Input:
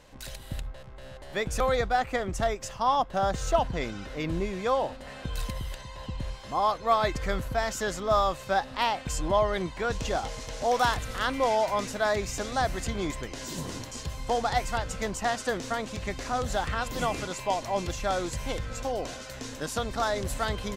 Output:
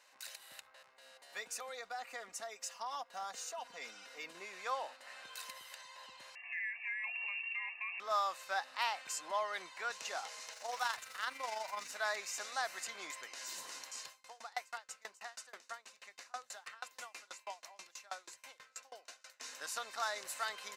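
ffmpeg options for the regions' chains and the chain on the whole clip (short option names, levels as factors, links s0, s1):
-filter_complex "[0:a]asettb=1/sr,asplit=3[s0][s1][s2];[s0]atrim=end=0.904[s3];[s1]atrim=start=0.9:end=4.35,asetpts=PTS-STARTPTS,afade=t=in:d=0.004:c=qsin,afade=t=out:st=3.446:d=0.004:c=qsin,equalizer=f=1600:t=o:w=2.1:g=-4.5,aecho=1:1:4.2:0.68,atrim=end_sample=152145,acompressor=threshold=0.0501:ratio=6:attack=3.2:release=140:knee=1:detection=peak[s4];[s2]atrim=start=4.346[s5];[s3][s4]acrossfade=d=0.004:c1=hsin:c2=qsin[s6];[s6][s5]acrossfade=d=0.004:c1=qsin:c2=hsin,asettb=1/sr,asplit=3[s7][s8][s9];[s7]atrim=end=6.354[s10];[s8]atrim=start=6.35:end=8,asetpts=PTS-STARTPTS,afade=t=in:d=0.004:c=qsin,afade=t=out:st=1.646:d=0.004:c=qsin,lowpass=f=2400:t=q:w=0.5098,lowpass=f=2400:t=q:w=0.6013,lowpass=f=2400:t=q:w=0.9,lowpass=f=2400:t=q:w=2.563,afreqshift=-2800,acompressor=threshold=0.0251:ratio=4:attack=3.2:release=140:knee=1:detection=peak,asuperstop=centerf=1400:order=8:qfactor=3[s11];[s9]atrim=start=7.996[s12];[s10][s11]acrossfade=d=0.004:c1=hsin:c2=qsin[s13];[s13][s12]acrossfade=d=0.004:c1=qsin:c2=hsin,asettb=1/sr,asplit=3[s14][s15][s16];[s14]atrim=end=10.534[s17];[s15]atrim=start=10.53:end=11.92,asetpts=PTS-STARTPTS,afade=t=in:d=0.004:c=qsin,afade=t=out:st=1.386:d=0.004:c=qsin,aeval=exprs='sgn(val(0))*max(abs(val(0))-0.00266,0)':c=same,asubboost=boost=8.5:cutoff=230,tremolo=f=24:d=0.519[s18];[s16]atrim=start=11.916[s19];[s17][s18]acrossfade=d=0.004:c1=hsin:c2=qsin[s20];[s20][s19]acrossfade=d=0.004:c1=qsin:c2=hsin,asettb=1/sr,asplit=3[s21][s22][s23];[s21]atrim=end=14.084[s24];[s22]atrim=start=14.08:end=19.4,asetpts=PTS-STARTPTS,afade=t=in:d=0.004:c=qsin,afade=t=out:st=5.316:d=0.004:c=qsin,bandreject=f=60:t=h:w=6,bandreject=f=120:t=h:w=6,bandreject=f=180:t=h:w=6,bandreject=f=240:t=h:w=6,bandreject=f=300:t=h:w=6,bandreject=f=360:t=h:w=6,bandreject=f=420:t=h:w=6,aeval=exprs='val(0)*pow(10,-29*if(lt(mod(6.2*n/s,1),2*abs(6.2)/1000),1-mod(6.2*n/s,1)/(2*abs(6.2)/1000),(mod(6.2*n/s,1)-2*abs(6.2)/1000)/(1-2*abs(6.2)/1000))/20)':c=same[s25];[s23]atrim=start=19.396[s26];[s24][s25]acrossfade=d=0.004:c1=hsin:c2=qsin[s27];[s27][s26]acrossfade=d=0.004:c1=qsin:c2=hsin,highpass=1100,bandreject=f=3300:w=8,volume=0.562"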